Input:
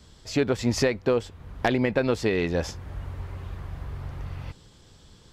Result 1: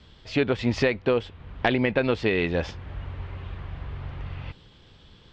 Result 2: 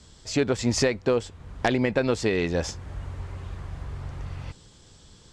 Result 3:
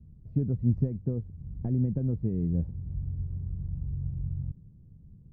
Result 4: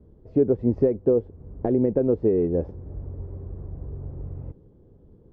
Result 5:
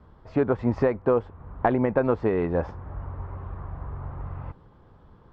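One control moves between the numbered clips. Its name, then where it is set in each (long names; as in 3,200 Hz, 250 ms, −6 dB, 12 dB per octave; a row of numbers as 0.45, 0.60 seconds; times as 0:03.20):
low-pass with resonance, frequency: 3,100, 8,000, 160, 420, 1,100 Hertz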